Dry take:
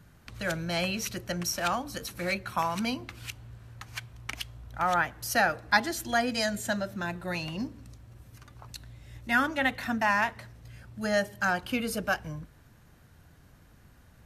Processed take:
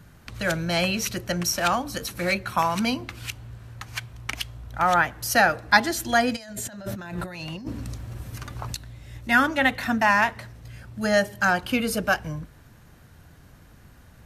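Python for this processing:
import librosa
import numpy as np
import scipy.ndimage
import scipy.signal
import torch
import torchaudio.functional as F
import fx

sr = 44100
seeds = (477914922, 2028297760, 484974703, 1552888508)

y = fx.over_compress(x, sr, threshold_db=-42.0, ratio=-1.0, at=(6.35, 8.74), fade=0.02)
y = y * librosa.db_to_amplitude(6.0)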